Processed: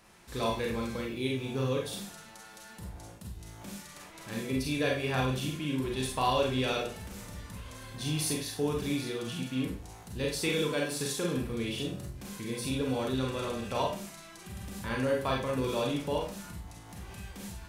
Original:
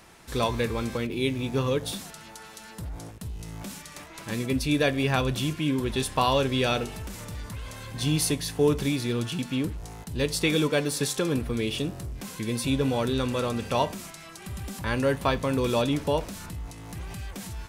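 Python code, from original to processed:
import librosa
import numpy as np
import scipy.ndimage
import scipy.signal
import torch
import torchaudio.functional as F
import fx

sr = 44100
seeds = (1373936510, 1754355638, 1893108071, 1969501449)

y = fx.rev_schroeder(x, sr, rt60_s=0.35, comb_ms=31, drr_db=-1.0)
y = y * librosa.db_to_amplitude(-8.5)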